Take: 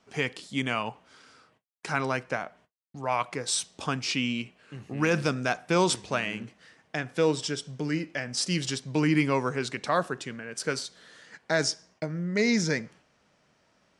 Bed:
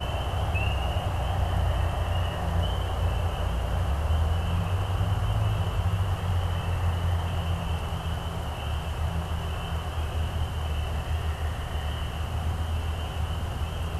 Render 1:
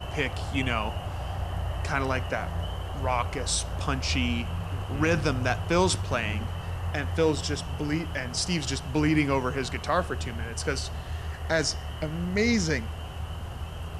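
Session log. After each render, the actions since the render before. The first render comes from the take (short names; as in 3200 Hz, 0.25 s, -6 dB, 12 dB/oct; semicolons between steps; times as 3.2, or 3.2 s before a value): add bed -5.5 dB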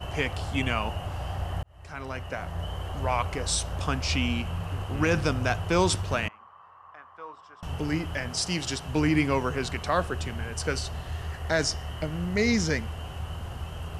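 1.63–2.83 fade in linear; 6.28–7.63 band-pass 1100 Hz, Q 7.6; 8.31–8.88 low shelf 91 Hz -11 dB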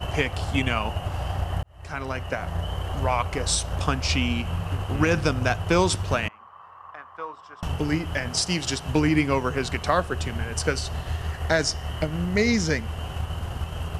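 transient shaper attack +4 dB, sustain -2 dB; in parallel at -1 dB: compressor, threshold -32 dBFS, peak gain reduction 14.5 dB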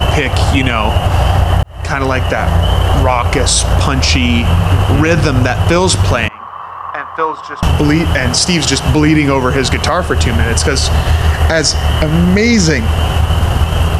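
in parallel at +0.5 dB: compressor, threshold -29 dBFS, peak gain reduction 13 dB; on the sum: maximiser +14 dB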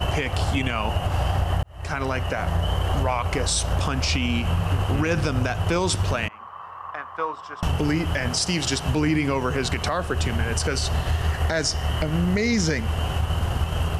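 gain -12 dB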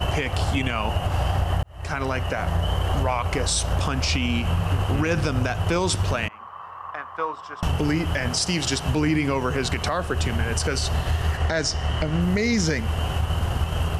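11.37–12.21 LPF 7700 Hz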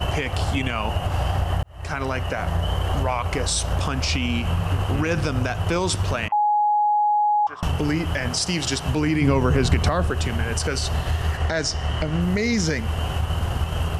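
6.32–7.47 bleep 836 Hz -16 dBFS; 9.21–10.1 low shelf 340 Hz +9.5 dB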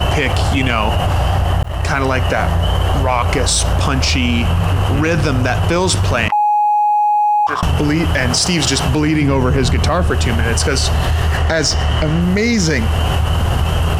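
sample leveller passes 1; fast leveller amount 70%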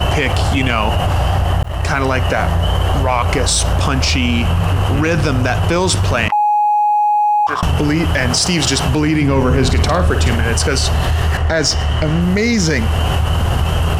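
9.31–10.38 flutter echo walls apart 8.9 m, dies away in 0.38 s; 11.37–12.02 three-band expander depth 40%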